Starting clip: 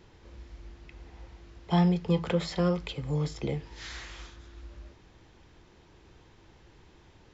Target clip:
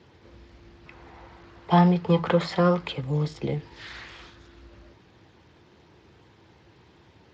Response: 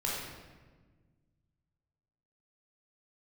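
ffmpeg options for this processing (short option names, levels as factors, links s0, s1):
-filter_complex "[0:a]asettb=1/sr,asplit=3[s0][s1][s2];[s0]atrim=end=0.864[s3];[s1]atrim=start=0.86:end=3.01,asetpts=PTS-STARTPTS,afade=t=in:d=0.004:c=qsin,afade=t=out:st=2.146:d=0.004:c=qsin,equalizer=f=1100:w=0.71:g=8[s4];[s2]atrim=start=3.006[s5];[s3][s4]acrossfade=d=0.004:c1=hsin:c2=qsin[s6];[s6][s5]acrossfade=d=0.004:c1=qsin:c2=hsin,asettb=1/sr,asplit=3[s7][s8][s9];[s7]atrim=end=3.574[s10];[s8]atrim=start=3.57:end=4.34,asetpts=PTS-STARTPTS,afade=t=in:d=0.004:c=qsin,afade=t=out:st=0.766:d=0.004:c=qsin,acrossover=split=4100[s11][s12];[s12]acompressor=threshold=0.00158:ratio=4:attack=1:release=60[s13];[s11][s13]amix=inputs=2:normalize=0[s14];[s9]atrim=start=4.336[s15];[s10][s14]acrossfade=d=0.004:c1=hsin:c2=qsin[s16];[s16][s15]acrossfade=d=0.004:c1=qsin:c2=hsin,volume=1.41" -ar 32000 -c:a libspeex -b:a 28k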